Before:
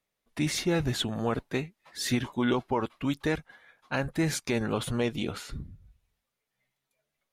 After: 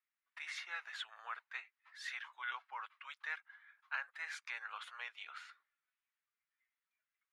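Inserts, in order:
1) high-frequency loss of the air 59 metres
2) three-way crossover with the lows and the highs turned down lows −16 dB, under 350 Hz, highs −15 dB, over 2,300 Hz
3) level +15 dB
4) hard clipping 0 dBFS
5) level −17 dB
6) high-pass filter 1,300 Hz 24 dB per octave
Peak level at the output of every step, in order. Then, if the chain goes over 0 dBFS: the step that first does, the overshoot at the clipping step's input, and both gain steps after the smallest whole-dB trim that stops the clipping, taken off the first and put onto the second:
−15.5, −17.5, −2.5, −2.5, −19.5, −26.0 dBFS
no step passes full scale

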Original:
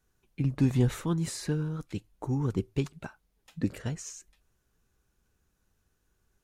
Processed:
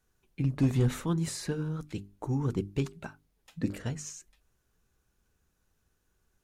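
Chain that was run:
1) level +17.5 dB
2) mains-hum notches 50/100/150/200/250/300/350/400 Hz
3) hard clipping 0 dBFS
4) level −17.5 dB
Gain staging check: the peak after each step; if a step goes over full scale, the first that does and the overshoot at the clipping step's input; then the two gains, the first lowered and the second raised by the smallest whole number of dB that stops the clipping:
+4.5, +3.5, 0.0, −17.5 dBFS
step 1, 3.5 dB
step 1 +13.5 dB, step 4 −13.5 dB

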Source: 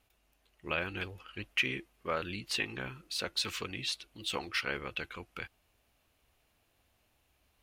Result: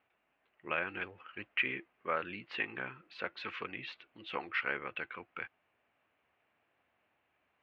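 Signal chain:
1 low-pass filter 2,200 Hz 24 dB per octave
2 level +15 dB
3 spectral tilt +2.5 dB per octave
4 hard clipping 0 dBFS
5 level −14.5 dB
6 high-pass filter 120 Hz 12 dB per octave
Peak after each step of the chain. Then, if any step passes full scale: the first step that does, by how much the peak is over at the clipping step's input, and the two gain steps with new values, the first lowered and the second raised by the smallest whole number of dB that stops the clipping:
−19.0, −4.0, −3.0, −3.0, −17.5, −18.0 dBFS
no step passes full scale

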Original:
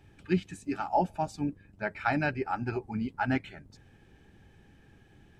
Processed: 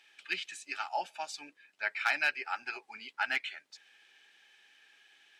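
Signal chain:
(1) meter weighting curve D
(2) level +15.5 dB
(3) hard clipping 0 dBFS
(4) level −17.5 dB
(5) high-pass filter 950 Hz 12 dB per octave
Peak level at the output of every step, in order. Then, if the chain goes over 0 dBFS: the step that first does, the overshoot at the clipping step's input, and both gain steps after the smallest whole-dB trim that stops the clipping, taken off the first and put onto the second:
−9.0, +6.5, 0.0, −17.5, −14.5 dBFS
step 2, 6.5 dB
step 2 +8.5 dB, step 4 −10.5 dB

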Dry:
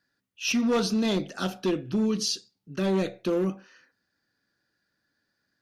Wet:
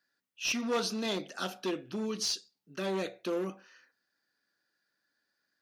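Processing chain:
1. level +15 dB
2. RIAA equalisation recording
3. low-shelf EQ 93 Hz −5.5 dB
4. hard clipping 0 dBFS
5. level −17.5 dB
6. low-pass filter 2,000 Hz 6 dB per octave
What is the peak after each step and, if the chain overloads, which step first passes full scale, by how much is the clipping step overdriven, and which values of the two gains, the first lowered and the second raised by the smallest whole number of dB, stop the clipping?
−2.0, +8.5, +8.5, 0.0, −17.5, −20.5 dBFS
step 2, 8.5 dB
step 1 +6 dB, step 5 −8.5 dB

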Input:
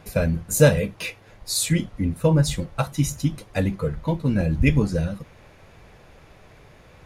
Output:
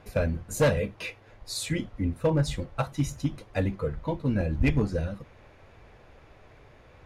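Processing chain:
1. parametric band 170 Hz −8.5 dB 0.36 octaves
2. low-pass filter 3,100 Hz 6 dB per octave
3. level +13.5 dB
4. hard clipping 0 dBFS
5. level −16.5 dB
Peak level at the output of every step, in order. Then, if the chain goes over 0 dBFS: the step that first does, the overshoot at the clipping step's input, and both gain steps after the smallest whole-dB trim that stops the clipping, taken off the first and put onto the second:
−4.0, −4.0, +9.5, 0.0, −16.5 dBFS
step 3, 9.5 dB
step 3 +3.5 dB, step 5 −6.5 dB

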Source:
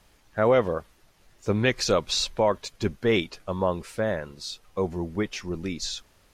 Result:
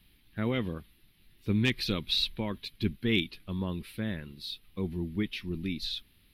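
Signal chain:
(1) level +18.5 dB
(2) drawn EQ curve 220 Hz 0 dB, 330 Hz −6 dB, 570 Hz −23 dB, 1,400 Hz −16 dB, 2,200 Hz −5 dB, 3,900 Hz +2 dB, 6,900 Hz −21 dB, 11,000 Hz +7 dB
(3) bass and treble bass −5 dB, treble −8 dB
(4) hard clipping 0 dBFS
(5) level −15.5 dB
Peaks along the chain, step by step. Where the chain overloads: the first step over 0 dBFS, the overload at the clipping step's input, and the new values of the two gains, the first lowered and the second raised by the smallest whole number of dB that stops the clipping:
+9.0, +8.5, +6.0, 0.0, −15.5 dBFS
step 1, 6.0 dB
step 1 +12.5 dB, step 5 −9.5 dB

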